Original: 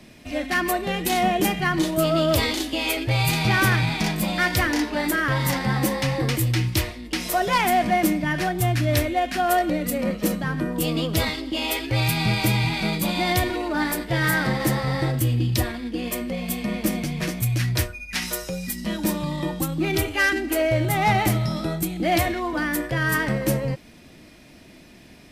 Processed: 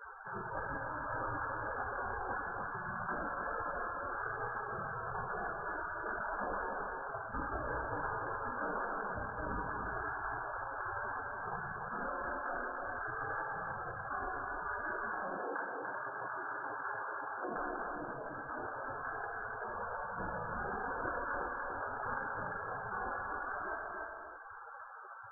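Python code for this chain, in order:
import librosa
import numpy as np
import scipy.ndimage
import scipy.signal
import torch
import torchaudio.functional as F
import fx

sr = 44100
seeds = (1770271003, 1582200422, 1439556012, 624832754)

y = fx.hum_notches(x, sr, base_hz=50, count=7)
y = fx.spec_gate(y, sr, threshold_db=-30, keep='weak')
y = fx.highpass(y, sr, hz=190.0, slope=12, at=(15.06, 17.54))
y = fx.tremolo_random(y, sr, seeds[0], hz=3.5, depth_pct=55)
y = fx.brickwall_lowpass(y, sr, high_hz=1700.0)
y = y + 10.0 ** (-10.0 / 20.0) * np.pad(y, (int(291 * sr / 1000.0), 0))[:len(y)]
y = fx.rev_gated(y, sr, seeds[1], gate_ms=360, shape='falling', drr_db=10.5)
y = fx.env_flatten(y, sr, amount_pct=70)
y = F.gain(torch.from_numpy(y), 7.0).numpy()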